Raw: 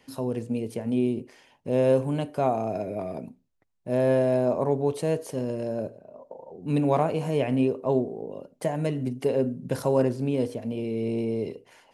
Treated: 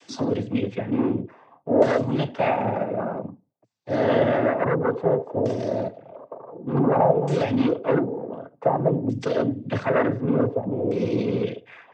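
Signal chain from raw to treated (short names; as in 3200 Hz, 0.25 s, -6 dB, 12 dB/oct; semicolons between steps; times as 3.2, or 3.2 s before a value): sine folder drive 7 dB, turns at -10 dBFS; LFO low-pass saw down 0.55 Hz 600–6200 Hz; noise vocoder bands 16; gain -6 dB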